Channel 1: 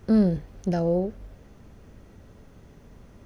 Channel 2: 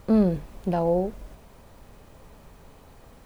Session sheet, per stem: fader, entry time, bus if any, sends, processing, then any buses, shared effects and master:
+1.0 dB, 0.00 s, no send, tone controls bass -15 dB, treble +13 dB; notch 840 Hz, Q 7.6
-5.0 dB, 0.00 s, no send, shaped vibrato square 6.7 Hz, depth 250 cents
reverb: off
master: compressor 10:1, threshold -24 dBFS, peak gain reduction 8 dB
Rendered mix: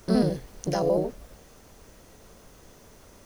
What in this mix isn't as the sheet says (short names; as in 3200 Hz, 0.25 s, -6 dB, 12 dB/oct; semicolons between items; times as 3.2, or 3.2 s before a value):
stem 2: polarity flipped; master: missing compressor 10:1, threshold -24 dBFS, peak gain reduction 8 dB